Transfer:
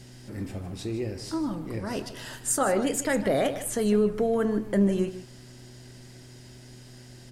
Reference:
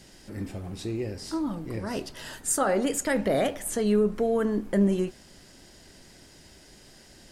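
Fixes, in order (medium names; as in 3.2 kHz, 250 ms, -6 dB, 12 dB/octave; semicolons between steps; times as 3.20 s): de-hum 123.7 Hz, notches 3; inverse comb 154 ms -13 dB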